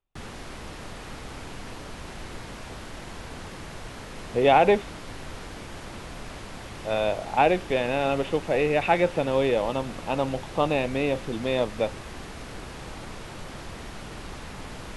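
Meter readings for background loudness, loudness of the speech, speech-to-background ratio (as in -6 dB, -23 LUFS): -40.0 LUFS, -24.5 LUFS, 15.5 dB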